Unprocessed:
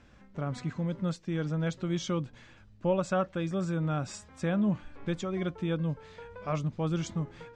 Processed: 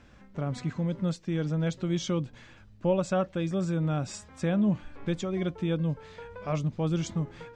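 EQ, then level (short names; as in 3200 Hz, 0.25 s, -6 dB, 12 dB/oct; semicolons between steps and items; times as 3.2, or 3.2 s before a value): dynamic EQ 1300 Hz, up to -5 dB, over -47 dBFS, Q 1.3; +2.5 dB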